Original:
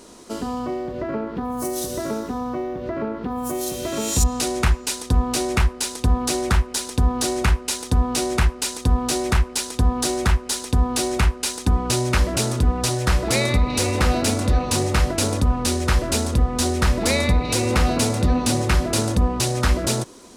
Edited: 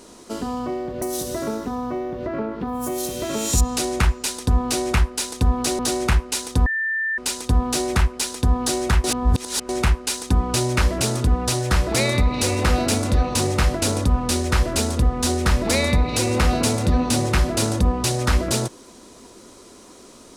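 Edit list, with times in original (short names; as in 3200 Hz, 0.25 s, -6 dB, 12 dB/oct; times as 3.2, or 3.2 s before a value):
1.02–1.65 cut
6.42–7.15 cut
8.02–8.54 bleep 1780 Hz -20.5 dBFS
10.4–11.05 reverse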